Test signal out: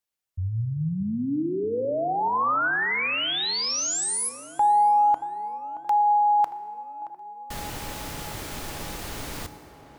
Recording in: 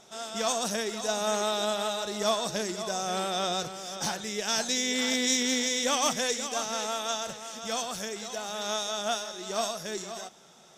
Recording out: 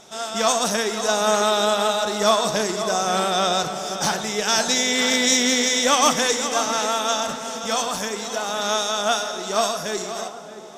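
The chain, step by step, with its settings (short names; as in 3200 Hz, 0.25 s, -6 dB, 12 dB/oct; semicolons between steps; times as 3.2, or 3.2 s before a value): dynamic EQ 1200 Hz, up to +4 dB, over -44 dBFS, Q 1.4; on a send: tape echo 0.626 s, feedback 80%, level -12 dB, low-pass 1200 Hz; on the sum: FDN reverb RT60 2.1 s, low-frequency decay 0.95×, high-frequency decay 0.75×, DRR 11.5 dB; gain +7.5 dB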